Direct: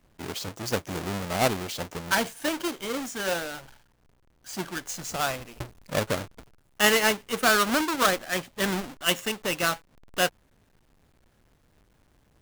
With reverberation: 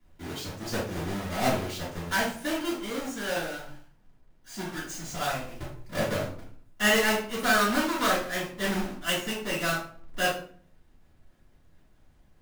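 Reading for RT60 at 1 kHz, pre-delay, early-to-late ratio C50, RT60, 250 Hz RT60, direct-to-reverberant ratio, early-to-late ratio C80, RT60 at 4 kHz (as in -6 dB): 0.50 s, 3 ms, 4.5 dB, 0.50 s, 0.70 s, -13.0 dB, 10.0 dB, 0.35 s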